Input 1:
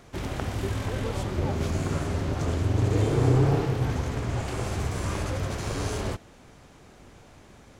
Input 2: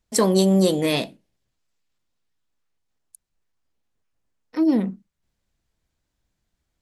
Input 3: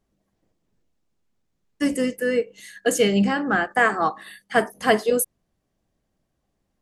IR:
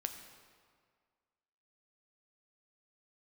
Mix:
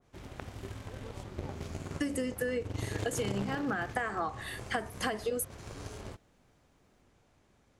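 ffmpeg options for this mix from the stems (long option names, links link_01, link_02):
-filter_complex "[0:a]aeval=exprs='0.335*(cos(1*acos(clip(val(0)/0.335,-1,1)))-cos(1*PI/2))+0.0944*(cos(3*acos(clip(val(0)/0.335,-1,1)))-cos(3*PI/2))':channel_layout=same,adynamicequalizer=threshold=0.00501:dfrequency=1600:dqfactor=0.7:tfrequency=1600:tqfactor=0.7:attack=5:release=100:ratio=0.375:range=3.5:mode=boostabove:tftype=highshelf,volume=0dB[link_01];[2:a]acompressor=threshold=-22dB:ratio=6,adelay=200,volume=0.5dB[link_02];[link_01][link_02]amix=inputs=2:normalize=0,acompressor=threshold=-30dB:ratio=6"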